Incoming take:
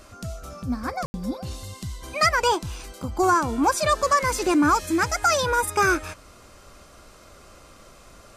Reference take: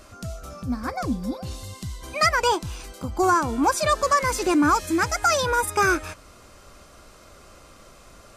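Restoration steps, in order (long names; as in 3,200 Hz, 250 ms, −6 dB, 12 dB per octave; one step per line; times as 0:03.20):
ambience match 0:01.06–0:01.14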